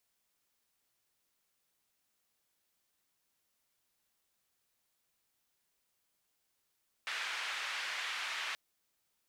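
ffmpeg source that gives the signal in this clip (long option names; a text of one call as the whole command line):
ffmpeg -f lavfi -i "anoisesrc=color=white:duration=1.48:sample_rate=44100:seed=1,highpass=frequency=1500,lowpass=frequency=2300,volume=-21dB" out.wav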